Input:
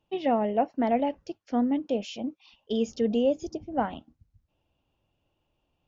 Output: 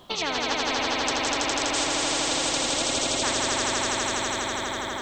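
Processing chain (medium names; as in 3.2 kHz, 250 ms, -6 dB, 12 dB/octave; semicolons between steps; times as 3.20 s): bass shelf 150 Hz -10 dB; in parallel at +2 dB: compression, threshold -38 dBFS, peak gain reduction 17 dB; on the sum: tape speed +17%; echo with a slow build-up 82 ms, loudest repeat 5, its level -3 dB; spectrum-flattening compressor 4:1; trim -3 dB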